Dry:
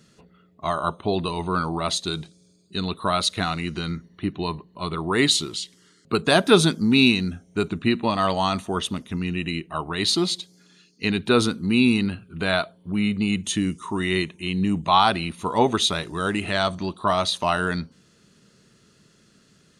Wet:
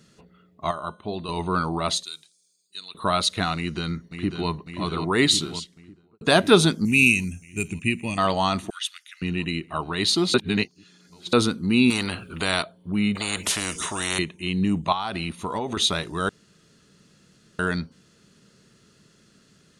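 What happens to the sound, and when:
0.71–1.29 s: feedback comb 210 Hz, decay 0.45 s, harmonics odd
2.03–2.95 s: differentiator
3.56–4.49 s: echo throw 550 ms, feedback 80%, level -7.5 dB
5.36–6.21 s: studio fade out
6.85–8.18 s: FFT filter 120 Hz 0 dB, 1.4 kHz -18 dB, 2.5 kHz +8 dB, 3.9 kHz -19 dB, 6.3 kHz +13 dB
8.70–9.22 s: steep high-pass 1.5 kHz 48 dB/octave
10.34–11.33 s: reverse
11.90–12.63 s: spectrum-flattening compressor 2:1
13.15–14.19 s: spectrum-flattening compressor 4:1
14.92–15.77 s: compression 12:1, threshold -23 dBFS
16.29–17.59 s: room tone

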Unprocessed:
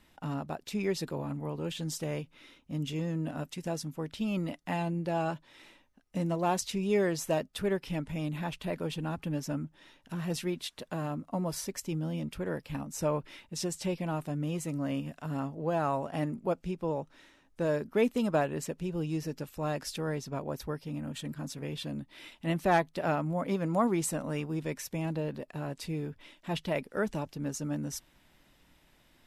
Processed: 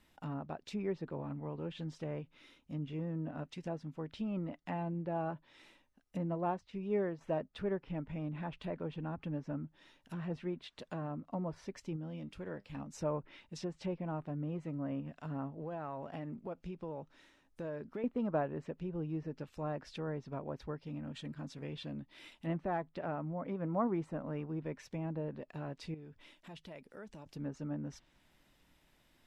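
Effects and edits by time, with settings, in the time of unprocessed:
6.51–7.21 s: upward expansion, over -40 dBFS
11.96–12.77 s: feedback comb 100 Hz, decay 0.15 s, mix 50%
15.60–18.04 s: compression 4:1, threshold -33 dBFS
22.57–23.60 s: compression 1.5:1, threshold -33 dBFS
25.94–27.26 s: compression 2.5:1, threshold -47 dBFS
whole clip: low-pass that closes with the level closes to 1.5 kHz, closed at -30 dBFS; trim -5.5 dB

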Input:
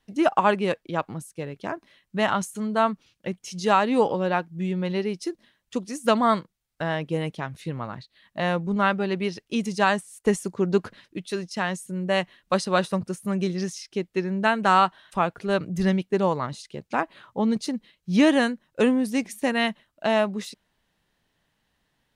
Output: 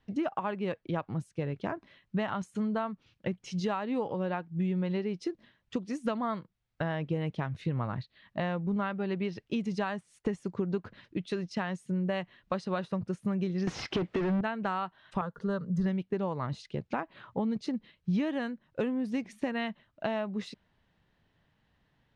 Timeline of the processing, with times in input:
13.67–14.41 s: overdrive pedal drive 37 dB, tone 1.4 kHz, clips at -12.5 dBFS
15.21–15.86 s: static phaser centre 480 Hz, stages 8
whole clip: compression 6:1, threshold -30 dBFS; Bessel low-pass 3.1 kHz, order 2; peaking EQ 100 Hz +7 dB 1.6 oct

